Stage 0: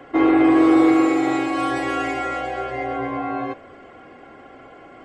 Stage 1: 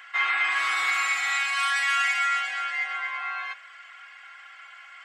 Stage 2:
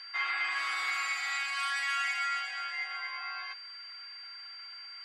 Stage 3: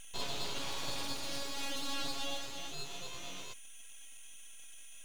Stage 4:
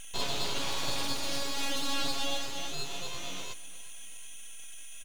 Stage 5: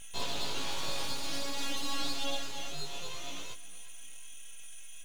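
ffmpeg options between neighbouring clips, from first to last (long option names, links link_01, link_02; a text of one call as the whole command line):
ffmpeg -i in.wav -af "highpass=frequency=1500:width=0.5412,highpass=frequency=1500:width=1.3066,volume=7dB" out.wav
ffmpeg -i in.wav -af "aeval=exprs='val(0)+0.0158*sin(2*PI*4700*n/s)':channel_layout=same,volume=-8dB" out.wav
ffmpeg -i in.wav -af "aeval=exprs='abs(val(0))':channel_layout=same,volume=-3dB" out.wav
ffmpeg -i in.wav -af "aecho=1:1:358|716|1074|1432:0.112|0.0583|0.0303|0.0158,volume=6dB" out.wav
ffmpeg -i in.wav -af "flanger=delay=17:depth=2.7:speed=0.53" out.wav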